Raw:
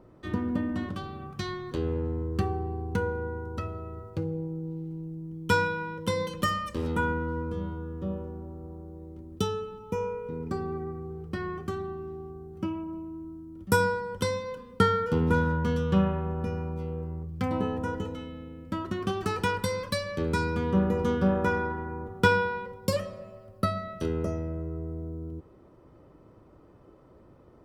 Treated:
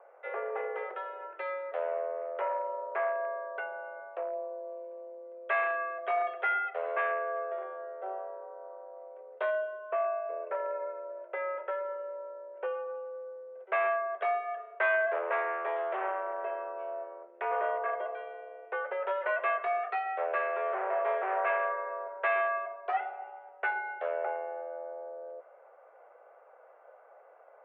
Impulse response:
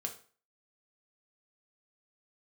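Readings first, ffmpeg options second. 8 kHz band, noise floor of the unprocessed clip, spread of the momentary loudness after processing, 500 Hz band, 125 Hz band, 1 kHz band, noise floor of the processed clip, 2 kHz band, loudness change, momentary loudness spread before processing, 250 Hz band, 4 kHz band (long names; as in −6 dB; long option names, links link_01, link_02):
below −35 dB, −55 dBFS, 14 LU, −1.0 dB, below −40 dB, +0.5 dB, −57 dBFS, 0.0 dB, −3.0 dB, 14 LU, −27.5 dB, below −15 dB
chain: -filter_complex "[0:a]asoftclip=type=hard:threshold=-25dB,asplit=2[link_01][link_02];[1:a]atrim=start_sample=2205,lowpass=5000[link_03];[link_02][link_03]afir=irnorm=-1:irlink=0,volume=-10.5dB[link_04];[link_01][link_04]amix=inputs=2:normalize=0,highpass=frequency=320:width_type=q:width=0.5412,highpass=frequency=320:width_type=q:width=1.307,lowpass=frequency=2300:width_type=q:width=0.5176,lowpass=frequency=2300:width_type=q:width=0.7071,lowpass=frequency=2300:width_type=q:width=1.932,afreqshift=190"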